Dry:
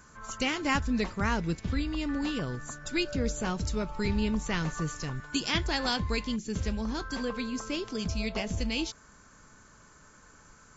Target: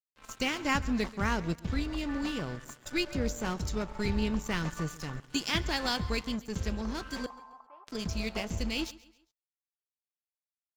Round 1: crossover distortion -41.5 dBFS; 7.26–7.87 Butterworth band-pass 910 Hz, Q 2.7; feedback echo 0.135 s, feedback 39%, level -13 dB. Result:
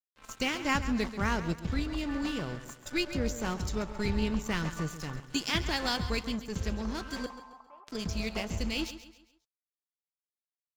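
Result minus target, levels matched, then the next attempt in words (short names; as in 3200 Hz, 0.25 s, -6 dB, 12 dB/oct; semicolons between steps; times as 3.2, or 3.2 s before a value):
echo-to-direct +7 dB
crossover distortion -41.5 dBFS; 7.26–7.87 Butterworth band-pass 910 Hz, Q 2.7; feedback echo 0.135 s, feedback 39%, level -20 dB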